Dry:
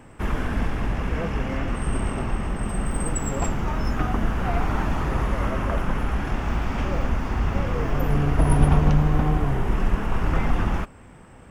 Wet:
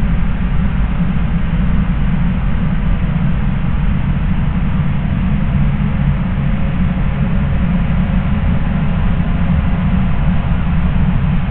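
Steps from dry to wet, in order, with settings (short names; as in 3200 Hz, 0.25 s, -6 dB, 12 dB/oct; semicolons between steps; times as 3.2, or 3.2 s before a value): delta modulation 16 kbps, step -20 dBFS; resonant low shelf 240 Hz +10 dB, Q 3; Paulstretch 20×, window 0.50 s, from 2.95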